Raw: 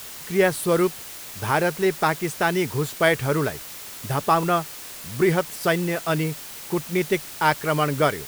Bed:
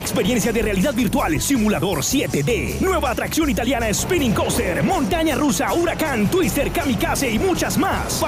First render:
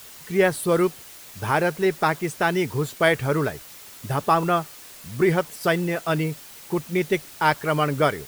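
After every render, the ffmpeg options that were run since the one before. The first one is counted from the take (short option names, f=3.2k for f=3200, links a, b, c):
-af "afftdn=nr=6:nf=-38"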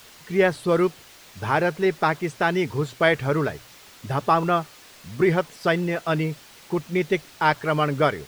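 -filter_complex "[0:a]acrossover=split=6100[a][b];[b]acompressor=threshold=-52dB:ratio=4:attack=1:release=60[c];[a][c]amix=inputs=2:normalize=0,bandreject=f=60:t=h:w=6,bandreject=f=120:t=h:w=6"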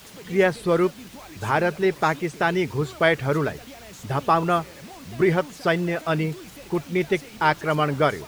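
-filter_complex "[1:a]volume=-24dB[a];[0:a][a]amix=inputs=2:normalize=0"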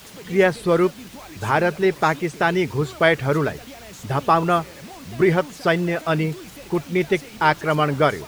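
-af "volume=2.5dB"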